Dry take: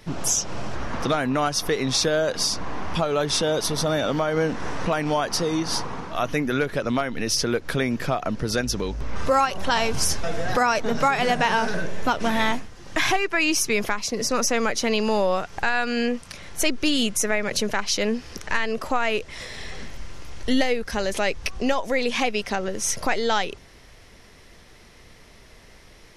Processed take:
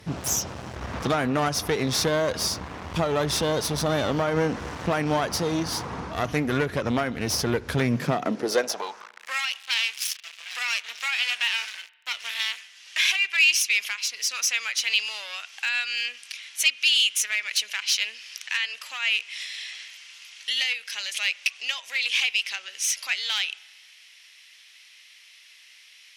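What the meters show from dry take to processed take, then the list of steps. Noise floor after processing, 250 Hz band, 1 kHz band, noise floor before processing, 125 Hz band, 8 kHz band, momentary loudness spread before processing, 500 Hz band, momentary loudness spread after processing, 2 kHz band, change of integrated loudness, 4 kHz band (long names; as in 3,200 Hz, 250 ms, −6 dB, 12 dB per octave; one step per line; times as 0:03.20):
−52 dBFS, −5.0 dB, −7.5 dB, −49 dBFS, −0.5 dB, −1.5 dB, 8 LU, −5.0 dB, 12 LU, +0.5 dB, −1.0 dB, +3.0 dB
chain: asymmetric clip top −26.5 dBFS, bottom −9.5 dBFS
high-pass filter sweep 71 Hz → 2,700 Hz, 0:07.69–0:09.41
spring reverb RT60 1.3 s, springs 33 ms, chirp 60 ms, DRR 20 dB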